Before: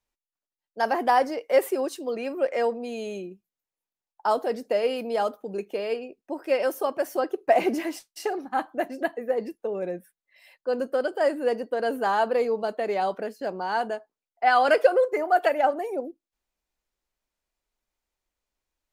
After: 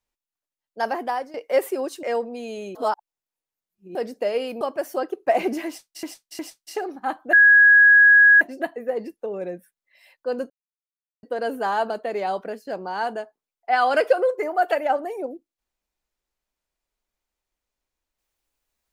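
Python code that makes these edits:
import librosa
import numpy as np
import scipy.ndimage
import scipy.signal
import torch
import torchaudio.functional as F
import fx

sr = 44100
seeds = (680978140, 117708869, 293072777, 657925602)

y = fx.edit(x, sr, fx.fade_out_to(start_s=0.83, length_s=0.51, floor_db=-15.5),
    fx.cut(start_s=2.03, length_s=0.49),
    fx.reverse_span(start_s=3.24, length_s=1.2),
    fx.cut(start_s=5.1, length_s=1.72),
    fx.repeat(start_s=7.88, length_s=0.36, count=3),
    fx.insert_tone(at_s=8.82, length_s=1.08, hz=1660.0, db=-9.0),
    fx.silence(start_s=10.91, length_s=0.73),
    fx.cut(start_s=12.31, length_s=0.33), tone=tone)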